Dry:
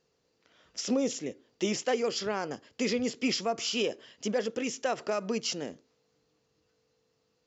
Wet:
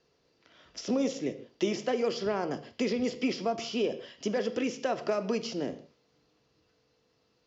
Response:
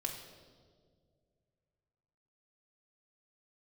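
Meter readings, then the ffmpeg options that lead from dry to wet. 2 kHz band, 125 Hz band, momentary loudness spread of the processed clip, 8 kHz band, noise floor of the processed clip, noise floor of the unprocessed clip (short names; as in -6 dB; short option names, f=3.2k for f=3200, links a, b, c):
-2.5 dB, +1.5 dB, 7 LU, n/a, -72 dBFS, -75 dBFS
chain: -filter_complex "[0:a]acrossover=split=360|950[a][b][c];[a]acompressor=threshold=-35dB:ratio=4[d];[b]acompressor=threshold=-34dB:ratio=4[e];[c]acompressor=threshold=-43dB:ratio=4[f];[d][e][f]amix=inputs=3:normalize=0,lowpass=f=5.9k:w=0.5412,lowpass=f=5.9k:w=1.3066,asplit=2[g][h];[1:a]atrim=start_sample=2205,afade=t=out:st=0.22:d=0.01,atrim=end_sample=10143[i];[h][i]afir=irnorm=-1:irlink=0,volume=-2.5dB[j];[g][j]amix=inputs=2:normalize=0"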